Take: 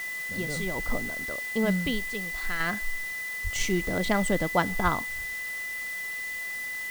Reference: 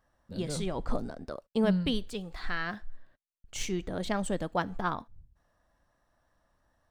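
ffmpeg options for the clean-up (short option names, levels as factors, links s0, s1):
-filter_complex "[0:a]bandreject=f=2000:w=30,asplit=3[s0][s1][s2];[s0]afade=t=out:st=3.43:d=0.02[s3];[s1]highpass=f=140:w=0.5412,highpass=f=140:w=1.3066,afade=t=in:st=3.43:d=0.02,afade=t=out:st=3.55:d=0.02[s4];[s2]afade=t=in:st=3.55:d=0.02[s5];[s3][s4][s5]amix=inputs=3:normalize=0,asplit=3[s6][s7][s8];[s6]afade=t=out:st=4.83:d=0.02[s9];[s7]highpass=f=140:w=0.5412,highpass=f=140:w=1.3066,afade=t=in:st=4.83:d=0.02,afade=t=out:st=4.95:d=0.02[s10];[s8]afade=t=in:st=4.95:d=0.02[s11];[s9][s10][s11]amix=inputs=3:normalize=0,afwtdn=0.0063,asetnsamples=n=441:p=0,asendcmd='2.6 volume volume -5.5dB',volume=1"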